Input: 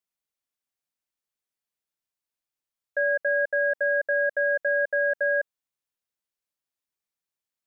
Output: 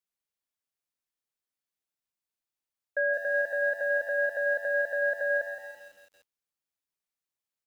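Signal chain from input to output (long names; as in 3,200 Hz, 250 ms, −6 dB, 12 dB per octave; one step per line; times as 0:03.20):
echo with shifted repeats 126 ms, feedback 43%, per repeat +96 Hz, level −20.5 dB
feedback echo at a low word length 168 ms, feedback 55%, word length 8 bits, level −10.5 dB
level −3 dB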